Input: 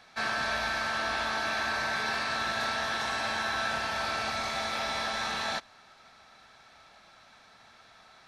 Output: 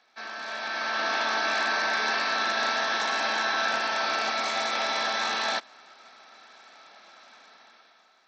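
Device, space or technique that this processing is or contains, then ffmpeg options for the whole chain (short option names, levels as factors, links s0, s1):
Bluetooth headset: -af "highpass=f=240:w=0.5412,highpass=f=240:w=1.3066,dynaudnorm=f=140:g=11:m=4.22,aresample=16000,aresample=44100,volume=0.398" -ar 32000 -c:a sbc -b:a 64k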